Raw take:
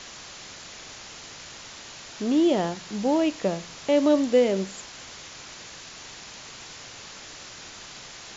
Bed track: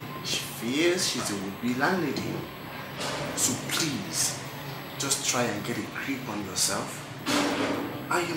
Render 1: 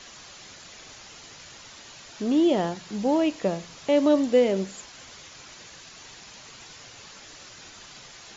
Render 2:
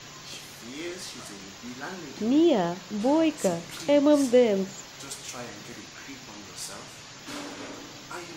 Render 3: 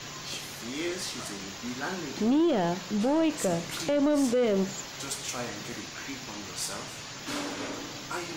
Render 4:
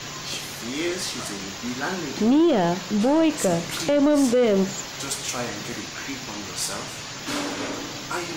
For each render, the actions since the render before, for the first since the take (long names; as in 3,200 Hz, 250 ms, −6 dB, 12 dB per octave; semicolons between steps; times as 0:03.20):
broadband denoise 6 dB, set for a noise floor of −43 dBFS
mix in bed track −12.5 dB
brickwall limiter −19 dBFS, peak gain reduction 9.5 dB; leveller curve on the samples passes 1
level +6 dB